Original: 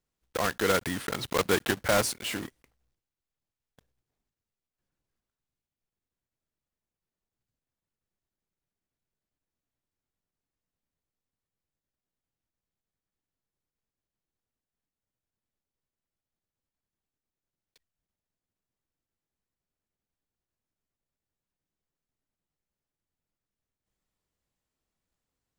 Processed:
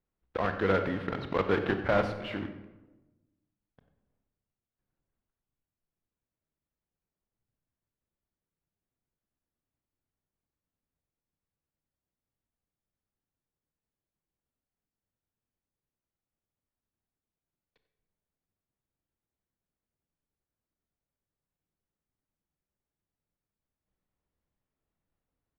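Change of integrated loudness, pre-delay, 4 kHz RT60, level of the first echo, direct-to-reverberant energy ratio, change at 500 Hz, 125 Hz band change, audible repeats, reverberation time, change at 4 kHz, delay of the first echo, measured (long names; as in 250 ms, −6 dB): −2.0 dB, 24 ms, 0.65 s, −15.0 dB, 7.0 dB, 0.0 dB, +2.0 dB, 1, 1.1 s, −10.5 dB, 93 ms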